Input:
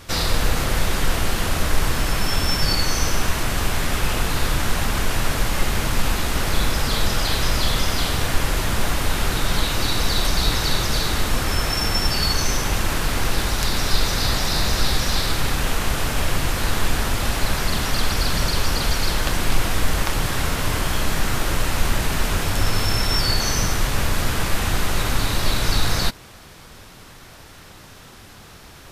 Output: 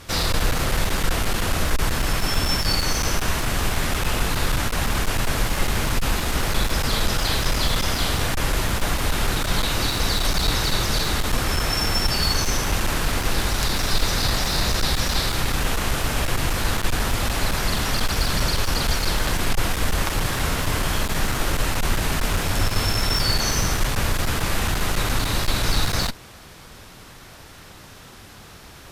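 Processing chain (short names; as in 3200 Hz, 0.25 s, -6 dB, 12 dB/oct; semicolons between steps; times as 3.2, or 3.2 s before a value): one-sided clip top -16 dBFS, bottom -7.5 dBFS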